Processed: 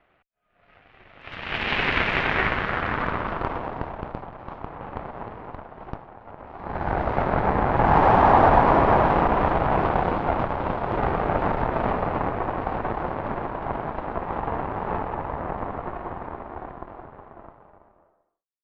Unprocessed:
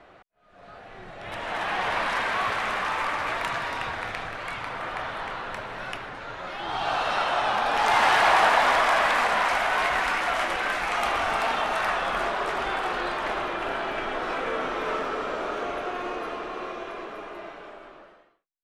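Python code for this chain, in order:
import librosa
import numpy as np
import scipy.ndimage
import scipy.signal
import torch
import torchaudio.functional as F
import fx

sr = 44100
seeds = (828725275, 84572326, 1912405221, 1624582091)

y = fx.cheby_harmonics(x, sr, harmonics=(3, 5, 6, 7), levels_db=(-25, -32, -7, -19), full_scale_db=-8.0)
y = fx.filter_sweep_lowpass(y, sr, from_hz=2600.0, to_hz=900.0, start_s=1.74, end_s=3.79, q=1.8)
y = fx.low_shelf(y, sr, hz=140.0, db=5.5)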